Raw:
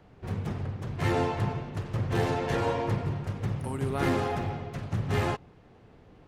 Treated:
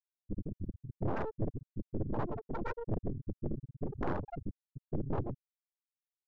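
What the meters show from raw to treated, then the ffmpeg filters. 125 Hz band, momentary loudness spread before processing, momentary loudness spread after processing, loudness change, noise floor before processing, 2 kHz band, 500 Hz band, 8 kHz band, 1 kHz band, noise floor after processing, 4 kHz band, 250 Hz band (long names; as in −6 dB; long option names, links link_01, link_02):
−10.5 dB, 8 LU, 8 LU, −9.5 dB, −56 dBFS, −14.5 dB, −9.5 dB, below −30 dB, −11.0 dB, below −85 dBFS, below −20 dB, −7.0 dB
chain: -af "afftfilt=real='re*gte(hypot(re,im),0.251)':imag='im*gte(hypot(re,im),0.251)':win_size=1024:overlap=0.75,aeval=exprs='0.119*(cos(1*acos(clip(val(0)/0.119,-1,1)))-cos(1*PI/2))+0.0422*(cos(6*acos(clip(val(0)/0.119,-1,1)))-cos(6*PI/2))+0.0531*(cos(7*acos(clip(val(0)/0.119,-1,1)))-cos(7*PI/2))':channel_layout=same,highshelf=frequency=4000:gain=-10.5,asoftclip=type=tanh:threshold=-18dB,adynamicsmooth=sensitivity=8:basefreq=2200,lowpass=6200,volume=-6dB"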